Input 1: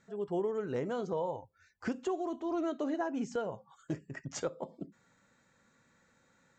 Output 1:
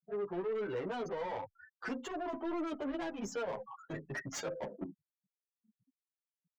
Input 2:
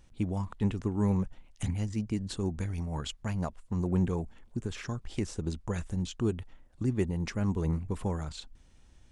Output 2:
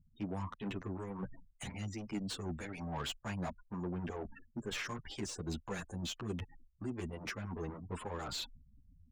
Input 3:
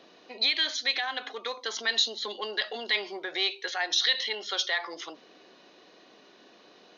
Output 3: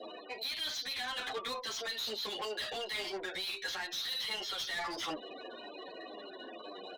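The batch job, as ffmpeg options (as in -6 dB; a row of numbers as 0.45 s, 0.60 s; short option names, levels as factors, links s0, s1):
-filter_complex "[0:a]acrossover=split=290|3000[s0][s1][s2];[s1]acompressor=threshold=0.0158:ratio=10[s3];[s0][s3][s2]amix=inputs=3:normalize=0,asoftclip=type=hard:threshold=0.0794,afftfilt=real='re*gte(hypot(re,im),0.00316)':imag='im*gte(hypot(re,im),0.00316)':win_size=1024:overlap=0.75,areverse,acompressor=threshold=0.01:ratio=8,areverse,asplit=2[s4][s5];[s5]highpass=f=720:p=1,volume=12.6,asoftclip=type=tanh:threshold=0.0316[s6];[s4][s6]amix=inputs=2:normalize=0,lowpass=f=4600:p=1,volume=0.501,asplit=2[s7][s8];[s8]adelay=9,afreqshift=-2[s9];[s7][s9]amix=inputs=2:normalize=1,volume=1.41"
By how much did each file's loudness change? -3.0 LU, -9.0 LU, -9.5 LU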